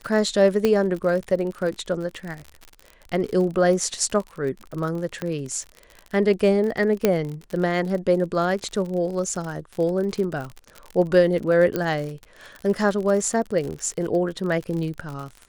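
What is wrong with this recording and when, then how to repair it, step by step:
crackle 54/s -29 dBFS
0.65 pop -8 dBFS
5.22 pop -15 dBFS
7.05 pop -5 dBFS
11.76 pop -11 dBFS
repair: de-click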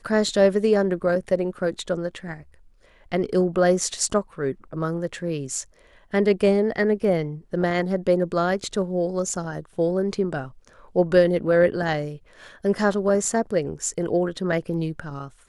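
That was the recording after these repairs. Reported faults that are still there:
0.65 pop
5.22 pop
7.05 pop

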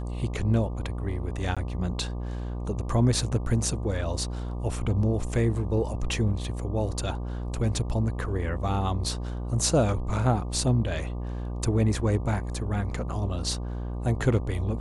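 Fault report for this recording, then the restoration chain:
buzz 60 Hz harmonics 20 -32 dBFS
1.55–1.57 gap 16 ms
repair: de-hum 60 Hz, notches 20; interpolate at 1.55, 16 ms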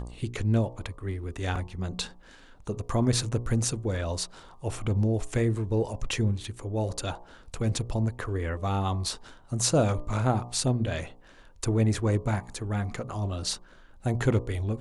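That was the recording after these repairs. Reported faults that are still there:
none

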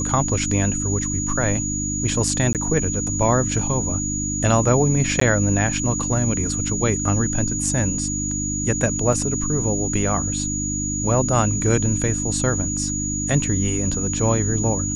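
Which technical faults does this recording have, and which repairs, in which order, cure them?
hum 50 Hz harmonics 6 -27 dBFS
tone 6800 Hz -25 dBFS
2.53–2.55 gap 18 ms
5.2–5.21 gap 14 ms
9.13 gap 3.2 ms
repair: de-hum 50 Hz, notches 6; notch 6800 Hz, Q 30; interpolate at 2.53, 18 ms; interpolate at 5.2, 14 ms; interpolate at 9.13, 3.2 ms

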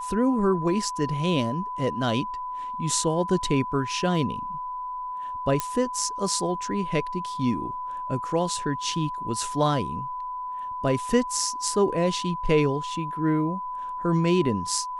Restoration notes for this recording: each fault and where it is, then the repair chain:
tone 1000 Hz -30 dBFS
5.6 pop -9 dBFS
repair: de-click; notch 1000 Hz, Q 30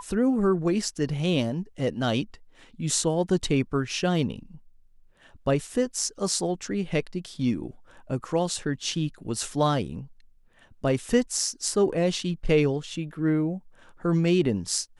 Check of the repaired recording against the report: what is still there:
none

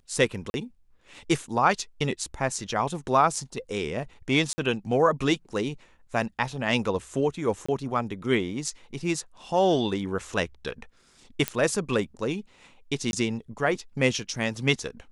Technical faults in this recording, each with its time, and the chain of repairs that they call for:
0.5–0.54 gap 41 ms
4.53–4.58 gap 50 ms
7.66–7.68 gap 25 ms
11.48 pop -8 dBFS
13.11–13.13 gap 21 ms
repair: de-click; interpolate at 0.5, 41 ms; interpolate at 4.53, 50 ms; interpolate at 7.66, 25 ms; interpolate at 13.11, 21 ms

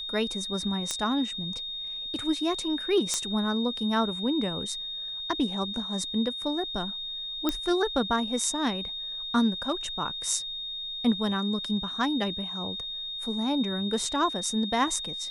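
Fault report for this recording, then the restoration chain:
tone 3700 Hz -33 dBFS
0.91 pop -14 dBFS
3.14 pop -13 dBFS
7.49 pop -12 dBFS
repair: de-click; notch 3700 Hz, Q 30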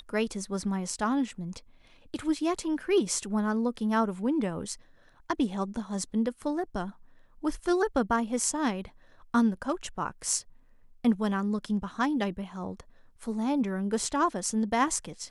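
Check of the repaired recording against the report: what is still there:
7.49 pop

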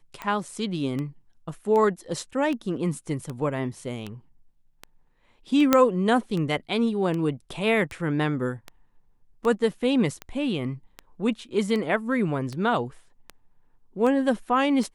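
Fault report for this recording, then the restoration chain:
tick 78 rpm -19 dBFS
5.73 pop -3 dBFS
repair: de-click

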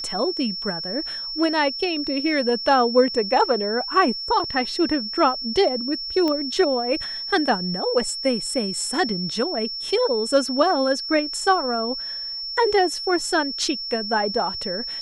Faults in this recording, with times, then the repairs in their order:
tone 5400 Hz -28 dBFS
6.28 pop -13 dBFS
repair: de-click; notch 5400 Hz, Q 30

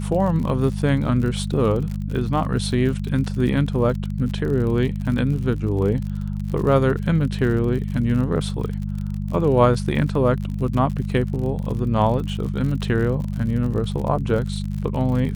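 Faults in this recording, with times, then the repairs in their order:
crackle 53/s -29 dBFS
hum 50 Hz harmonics 4 -26 dBFS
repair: de-click; de-hum 50 Hz, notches 4

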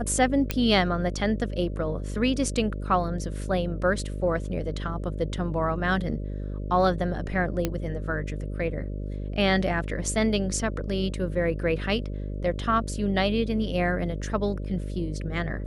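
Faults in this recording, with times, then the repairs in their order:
buzz 50 Hz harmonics 12 -32 dBFS
0.51 pop -10 dBFS
7.65 pop -11 dBFS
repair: de-click; de-hum 50 Hz, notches 12

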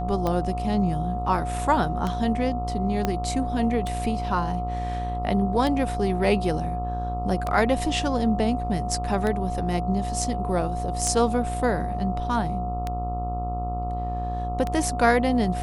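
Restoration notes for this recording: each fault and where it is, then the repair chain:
buzz 60 Hz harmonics 22 -30 dBFS
tick 33 1/3 rpm -14 dBFS
tone 720 Hz -30 dBFS
3.05 pop -10 dBFS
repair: de-click; de-hum 60 Hz, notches 22; notch 720 Hz, Q 30

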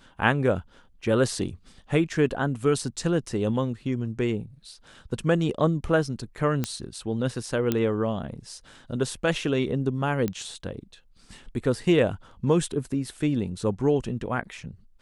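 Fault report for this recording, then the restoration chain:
6.64 pop -12 dBFS
7.72 pop -10 dBFS
10.28 pop -15 dBFS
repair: de-click

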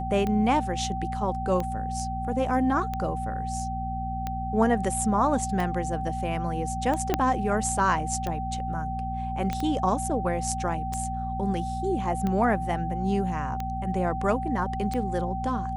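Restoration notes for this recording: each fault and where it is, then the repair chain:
hum 60 Hz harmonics 4 -33 dBFS
tick 45 rpm -17 dBFS
tone 770 Hz -31 dBFS
7.14 pop -8 dBFS
9.53 pop -16 dBFS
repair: de-click; de-hum 60 Hz, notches 4; notch 770 Hz, Q 30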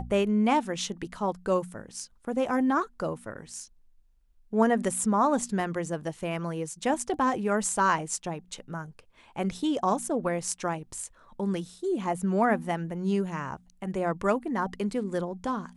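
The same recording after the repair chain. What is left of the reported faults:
7.14 pop

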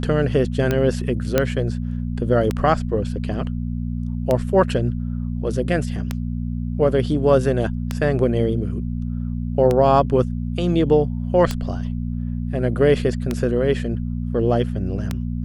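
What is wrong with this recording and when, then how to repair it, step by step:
hum 60 Hz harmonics 4 -25 dBFS
tick 33 1/3 rpm -8 dBFS
1.38 pop -3 dBFS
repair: de-click; de-hum 60 Hz, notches 4

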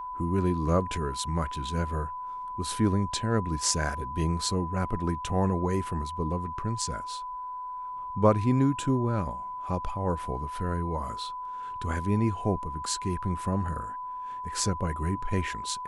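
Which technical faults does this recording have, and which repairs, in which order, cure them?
tone 1000 Hz -34 dBFS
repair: notch 1000 Hz, Q 30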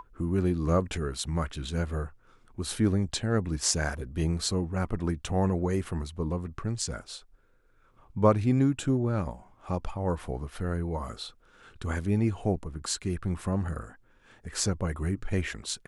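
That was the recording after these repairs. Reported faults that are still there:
none

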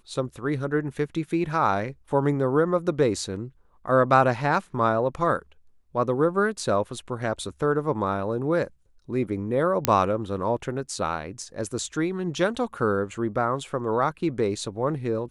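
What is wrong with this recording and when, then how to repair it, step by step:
9.85 pop -2 dBFS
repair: de-click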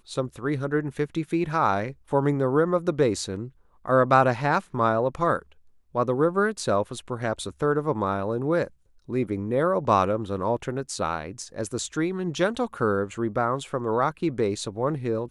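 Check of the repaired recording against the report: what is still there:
none

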